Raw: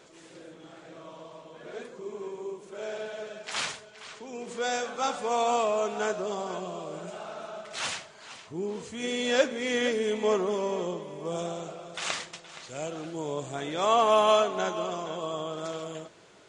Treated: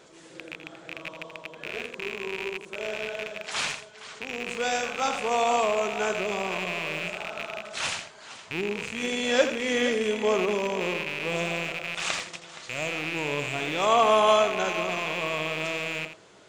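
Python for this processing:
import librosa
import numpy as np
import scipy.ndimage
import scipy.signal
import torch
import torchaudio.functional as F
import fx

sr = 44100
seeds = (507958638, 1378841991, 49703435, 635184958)

y = fx.rattle_buzz(x, sr, strikes_db=-51.0, level_db=-22.0)
y = y + 10.0 ** (-10.0 / 20.0) * np.pad(y, (int(83 * sr / 1000.0), 0))[:len(y)]
y = y * 10.0 ** (1.5 / 20.0)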